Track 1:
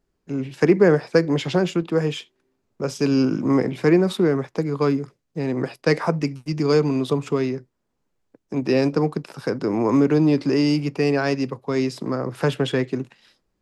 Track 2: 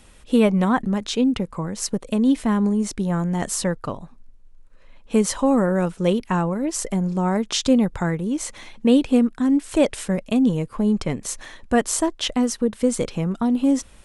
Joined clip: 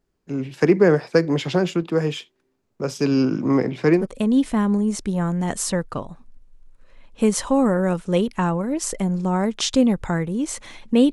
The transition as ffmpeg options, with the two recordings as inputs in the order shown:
ffmpeg -i cue0.wav -i cue1.wav -filter_complex "[0:a]asettb=1/sr,asplit=3[link_01][link_02][link_03];[link_01]atrim=end=3.044[link_04];[link_02]atrim=start=3.04:end=4.07,asetpts=PTS-STARTPTS,afade=type=in:duration=0.004:curve=qsin,afade=type=out:start_time=1.026:duration=0.004:curve=qsin,lowpass=6600[link_05];[link_03]atrim=start=4.066[link_06];[link_04][link_05]acrossfade=duration=0.004:curve1=hsin:curve2=qsin[link_07];[link_07][link_06]acrossfade=duration=0.004:curve1=qsin:curve2=hsin,apad=whole_dur=11.12,atrim=end=11.12,atrim=end=4.07,asetpts=PTS-STARTPTS[link_08];[1:a]atrim=start=1.85:end=9.04,asetpts=PTS-STARTPTS[link_09];[link_08][link_09]acrossfade=duration=0.14:curve1=tri:curve2=tri" out.wav

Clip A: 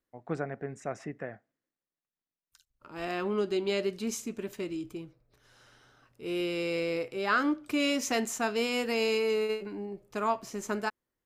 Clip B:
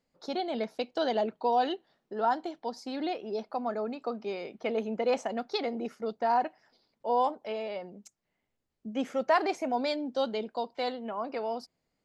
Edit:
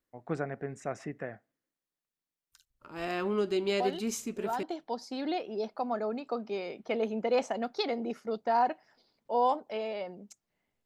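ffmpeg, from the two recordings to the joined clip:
ffmpeg -i cue0.wav -i cue1.wav -filter_complex "[1:a]asplit=2[link_01][link_02];[0:a]apad=whole_dur=10.85,atrim=end=10.85,atrim=end=4.632[link_03];[link_02]atrim=start=2.378:end=8.6[link_04];[link_01]atrim=start=1.55:end=2.38,asetpts=PTS-STARTPTS,volume=-7dB,afade=type=in:duration=0.004:curve=hsin,afade=type=out:start_time=0.826:duration=0.004:curve=hsin,adelay=3800[link_05];[link_03][link_04]acrossfade=duration=0.004:curve1=hsin:curve2=hsin[link_06];[link_06][link_05]amix=inputs=2:normalize=0" out.wav

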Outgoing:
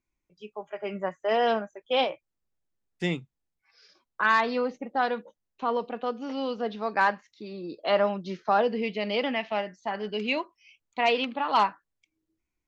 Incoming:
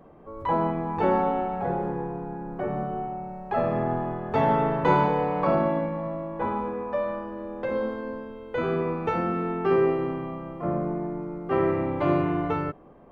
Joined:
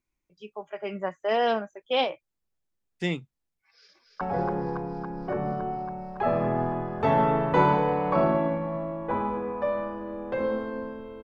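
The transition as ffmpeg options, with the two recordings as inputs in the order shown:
ffmpeg -i cue0.wav -i cue1.wav -filter_complex "[0:a]apad=whole_dur=11.23,atrim=end=11.23,atrim=end=4.212[link_01];[1:a]atrim=start=1.518:end=8.54[link_02];[link_01][link_02]acrossfade=duration=0.004:curve1=hsin:curve2=hsin,asplit=2[link_03][link_04];[link_04]afade=type=in:start_time=3.65:duration=0.01,afade=type=out:start_time=4.21:duration=0.01,aecho=0:1:280|560|840|1120|1400|1680|1960|2240|2520|2800|3080|3360:0.668344|0.534675|0.42774|0.342192|0.273754|0.219003|0.175202|0.140162|0.11213|0.0897036|0.0717629|0.0574103[link_05];[link_03][link_05]amix=inputs=2:normalize=0" out.wav

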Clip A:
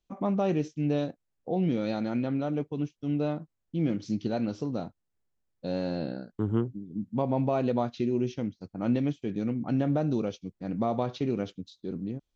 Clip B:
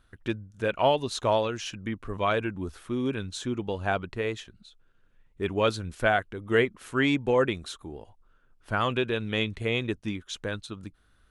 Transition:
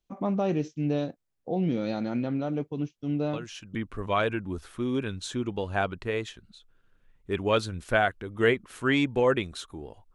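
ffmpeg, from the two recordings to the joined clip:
ffmpeg -i cue0.wav -i cue1.wav -filter_complex "[1:a]asplit=2[link_01][link_02];[0:a]apad=whole_dur=10.14,atrim=end=10.14,atrim=end=3.752[link_03];[link_02]atrim=start=1.858:end=8.25[link_04];[link_01]atrim=start=1.44:end=1.86,asetpts=PTS-STARTPTS,volume=-6.5dB,afade=type=in:duration=0.004:curve=hsin,afade=type=out:start_time=0.416:duration=0.004:curve=hsin,adelay=146853S[link_05];[link_03][link_04]acrossfade=duration=0.004:curve1=hsin:curve2=hsin[link_06];[link_06][link_05]amix=inputs=2:normalize=0" out.wav

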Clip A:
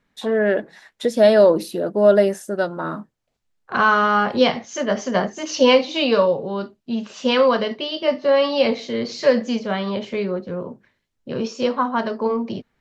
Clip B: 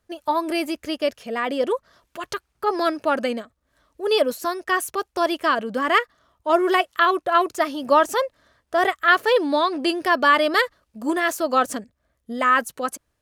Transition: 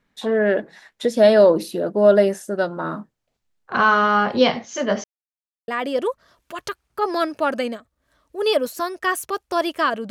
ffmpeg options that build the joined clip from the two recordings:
ffmpeg -i cue0.wav -i cue1.wav -filter_complex "[0:a]apad=whole_dur=10.1,atrim=end=10.1,asplit=2[link_01][link_02];[link_01]atrim=end=5.04,asetpts=PTS-STARTPTS,afade=type=out:start_time=5.036:duration=0.004:curve=hsin[link_03];[link_02]atrim=start=5.04:end=5.68,asetpts=PTS-STARTPTS,volume=0[link_04];[1:a]atrim=start=1.33:end=5.75,asetpts=PTS-STARTPTS,afade=type=in:duration=0.004:curve=hsin[link_05];[link_03][link_04][link_05]concat=n=3:v=0:a=1" out.wav

